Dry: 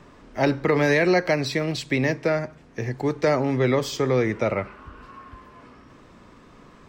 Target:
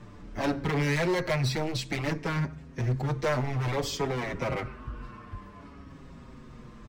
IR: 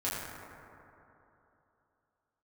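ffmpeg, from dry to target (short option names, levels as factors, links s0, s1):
-filter_complex "[0:a]asoftclip=type=tanh:threshold=0.224,bass=f=250:g=10,treble=f=4000:g=1,volume=12.6,asoftclip=hard,volume=0.0794,asplit=2[s0][s1];[s1]adelay=6.3,afreqshift=-0.58[s2];[s0][s2]amix=inputs=2:normalize=1"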